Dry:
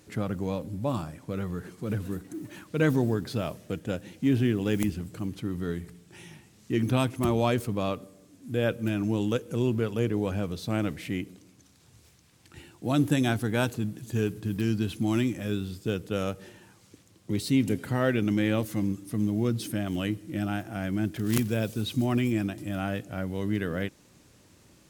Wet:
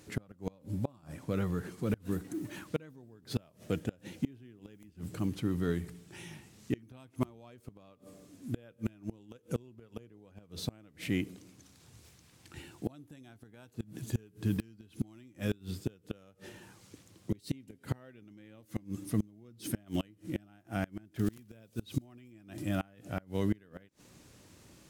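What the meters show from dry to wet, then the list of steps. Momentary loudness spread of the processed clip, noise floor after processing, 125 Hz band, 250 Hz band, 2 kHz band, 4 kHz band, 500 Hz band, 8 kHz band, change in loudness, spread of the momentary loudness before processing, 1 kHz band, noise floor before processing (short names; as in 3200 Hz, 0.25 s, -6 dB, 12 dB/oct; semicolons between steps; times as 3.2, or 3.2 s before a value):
20 LU, -64 dBFS, -9.0 dB, -9.5 dB, -11.5 dB, -10.5 dB, -11.5 dB, -8.0 dB, -9.0 dB, 10 LU, -12.5 dB, -59 dBFS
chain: flipped gate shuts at -19 dBFS, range -29 dB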